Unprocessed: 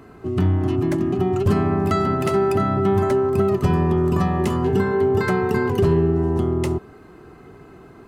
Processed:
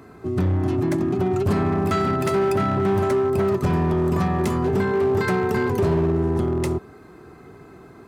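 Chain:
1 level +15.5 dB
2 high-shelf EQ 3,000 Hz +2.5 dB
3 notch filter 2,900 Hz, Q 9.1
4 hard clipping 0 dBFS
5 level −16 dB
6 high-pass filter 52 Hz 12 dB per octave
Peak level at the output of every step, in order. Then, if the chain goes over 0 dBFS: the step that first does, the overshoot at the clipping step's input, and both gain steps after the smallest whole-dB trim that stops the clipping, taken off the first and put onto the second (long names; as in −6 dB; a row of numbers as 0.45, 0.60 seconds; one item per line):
+6.0, +6.0, +6.0, 0.0, −16.0, −10.5 dBFS
step 1, 6.0 dB
step 1 +9.5 dB, step 5 −10 dB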